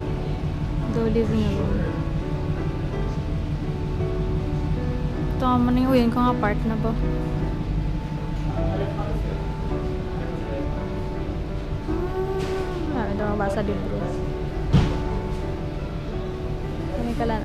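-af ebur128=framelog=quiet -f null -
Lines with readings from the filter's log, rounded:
Integrated loudness:
  I:         -25.6 LUFS
  Threshold: -35.6 LUFS
Loudness range:
  LRA:         5.3 LU
  Threshold: -45.5 LUFS
  LRA low:   -28.0 LUFS
  LRA high:  -22.7 LUFS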